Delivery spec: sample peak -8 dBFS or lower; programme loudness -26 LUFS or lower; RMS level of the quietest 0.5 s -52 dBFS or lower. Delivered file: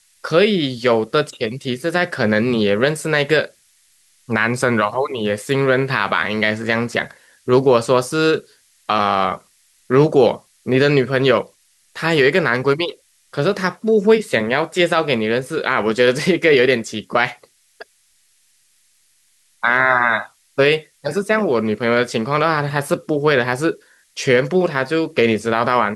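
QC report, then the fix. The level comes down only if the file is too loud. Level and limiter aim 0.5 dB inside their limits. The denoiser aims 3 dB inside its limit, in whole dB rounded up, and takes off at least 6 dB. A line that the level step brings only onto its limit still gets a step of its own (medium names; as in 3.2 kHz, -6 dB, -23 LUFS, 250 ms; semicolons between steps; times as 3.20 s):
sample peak -2.5 dBFS: fail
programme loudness -17.5 LUFS: fail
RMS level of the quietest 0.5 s -59 dBFS: pass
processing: trim -9 dB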